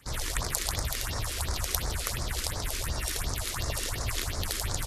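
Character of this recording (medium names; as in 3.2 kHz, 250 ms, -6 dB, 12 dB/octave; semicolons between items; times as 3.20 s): phasing stages 4, 2.8 Hz, lowest notch 120–2900 Hz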